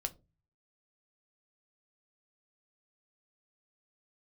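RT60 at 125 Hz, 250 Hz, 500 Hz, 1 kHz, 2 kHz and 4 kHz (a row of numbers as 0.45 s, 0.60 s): 0.75 s, 0.45 s, 0.35 s, 0.20 s, 0.15 s, 0.15 s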